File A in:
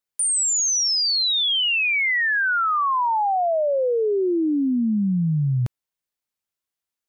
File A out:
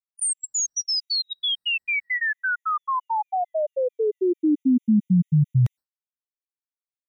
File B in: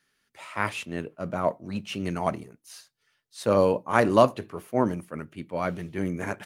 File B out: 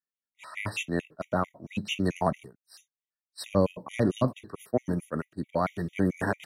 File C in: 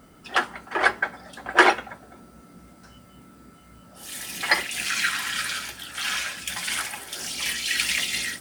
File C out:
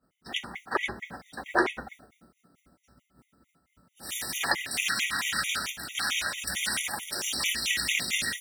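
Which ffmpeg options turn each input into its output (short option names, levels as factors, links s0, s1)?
-filter_complex "[0:a]acrossover=split=270[s0][s1];[s1]acompressor=threshold=0.0501:ratio=10[s2];[s0][s2]amix=inputs=2:normalize=0,agate=range=0.0224:threshold=0.0126:ratio=3:detection=peak,afftfilt=real='re*gt(sin(2*PI*4.5*pts/sr)*(1-2*mod(floor(b*sr/1024/1900),2)),0)':imag='im*gt(sin(2*PI*4.5*pts/sr)*(1-2*mod(floor(b*sr/1024/1900),2)),0)':win_size=1024:overlap=0.75,volume=1.68"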